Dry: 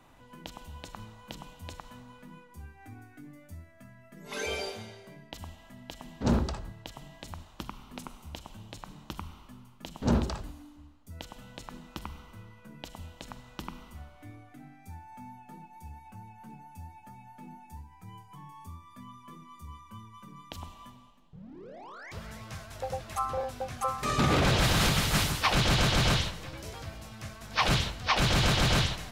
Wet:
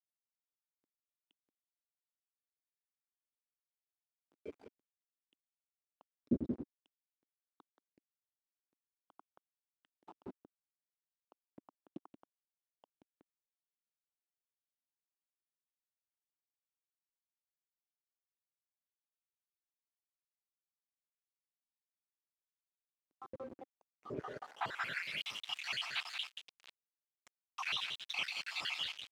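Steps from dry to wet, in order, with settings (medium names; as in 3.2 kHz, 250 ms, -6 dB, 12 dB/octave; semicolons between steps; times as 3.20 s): random holes in the spectrogram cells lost 79%; high-pass 63 Hz 24 dB/octave; on a send: delay 179 ms -5.5 dB; on the sum: small samples zeroed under -35 dBFS; band-pass sweep 290 Hz -> 2.8 kHz, 24.05–25.23 s; trim +1 dB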